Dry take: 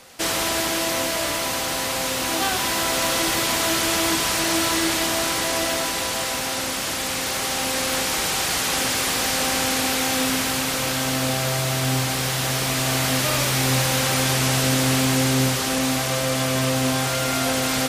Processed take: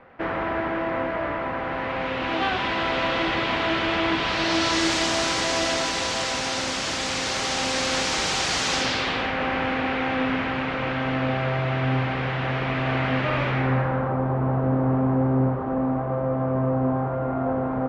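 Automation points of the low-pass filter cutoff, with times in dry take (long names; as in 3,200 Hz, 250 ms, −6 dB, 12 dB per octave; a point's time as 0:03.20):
low-pass filter 24 dB per octave
0:01.56 1,900 Hz
0:02.45 3,200 Hz
0:04.13 3,200 Hz
0:04.86 6,700 Hz
0:08.72 6,700 Hz
0:09.34 2,500 Hz
0:13.48 2,500 Hz
0:14.18 1,100 Hz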